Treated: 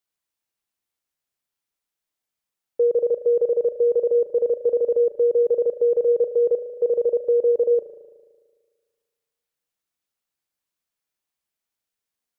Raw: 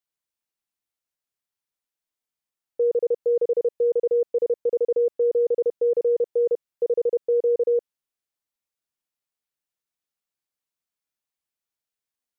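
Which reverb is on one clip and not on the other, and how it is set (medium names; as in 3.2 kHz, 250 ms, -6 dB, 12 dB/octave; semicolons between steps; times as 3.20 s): spring tank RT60 1.6 s, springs 37 ms, chirp 25 ms, DRR 9 dB; trim +3 dB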